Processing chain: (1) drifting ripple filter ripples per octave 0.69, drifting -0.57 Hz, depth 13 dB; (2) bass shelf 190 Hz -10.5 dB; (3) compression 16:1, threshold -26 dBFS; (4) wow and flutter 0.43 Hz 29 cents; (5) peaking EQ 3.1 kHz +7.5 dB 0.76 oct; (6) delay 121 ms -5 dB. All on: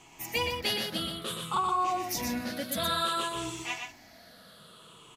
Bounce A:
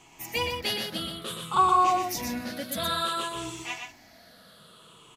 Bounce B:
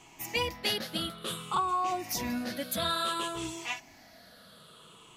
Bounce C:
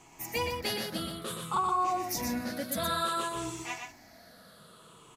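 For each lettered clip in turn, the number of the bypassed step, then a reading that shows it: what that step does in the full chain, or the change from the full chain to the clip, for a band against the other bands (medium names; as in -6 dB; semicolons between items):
3, crest factor change +2.0 dB; 6, loudness change -1.0 LU; 5, 4 kHz band -5.0 dB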